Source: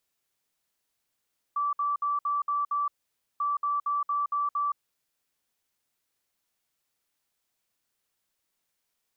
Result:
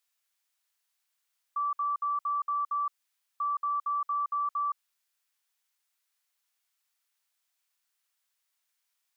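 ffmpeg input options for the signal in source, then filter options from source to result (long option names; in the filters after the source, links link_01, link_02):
-f lavfi -i "aevalsrc='0.0596*sin(2*PI*1160*t)*clip(min(mod(mod(t,1.84),0.23),0.17-mod(mod(t,1.84),0.23))/0.005,0,1)*lt(mod(t,1.84),1.38)':duration=3.68:sample_rate=44100"
-af "highpass=1000"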